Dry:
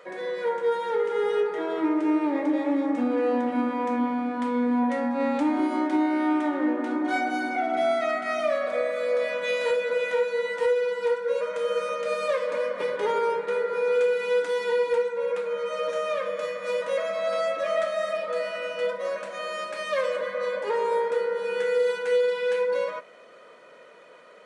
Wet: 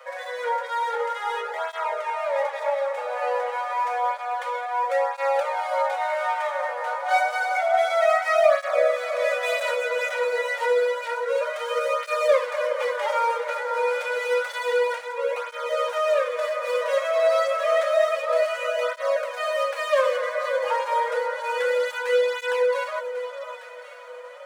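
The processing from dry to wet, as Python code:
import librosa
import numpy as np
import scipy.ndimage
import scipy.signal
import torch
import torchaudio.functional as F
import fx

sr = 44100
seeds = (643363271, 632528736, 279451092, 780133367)

p1 = scipy.signal.medfilt(x, 9)
p2 = scipy.signal.sosfilt(scipy.signal.butter(16, 510.0, 'highpass', fs=sr, output='sos'), p1)
p3 = p2 + fx.echo_alternate(p2, sr, ms=549, hz=1200.0, feedback_pct=57, wet_db=-8.5, dry=0)
p4 = fx.flanger_cancel(p3, sr, hz=0.29, depth_ms=7.1)
y = p4 * librosa.db_to_amplitude(8.5)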